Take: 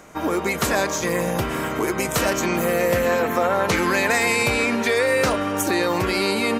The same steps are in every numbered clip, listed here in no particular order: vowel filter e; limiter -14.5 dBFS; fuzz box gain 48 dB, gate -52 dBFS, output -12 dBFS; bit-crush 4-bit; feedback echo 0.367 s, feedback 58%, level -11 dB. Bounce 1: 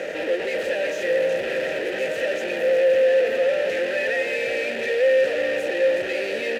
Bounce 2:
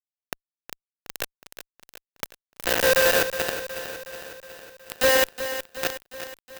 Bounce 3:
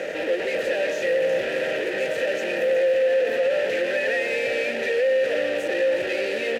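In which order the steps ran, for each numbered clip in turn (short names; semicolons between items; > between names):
feedback echo > limiter > fuzz box > bit-crush > vowel filter; limiter > vowel filter > bit-crush > fuzz box > feedback echo; fuzz box > feedback echo > bit-crush > vowel filter > limiter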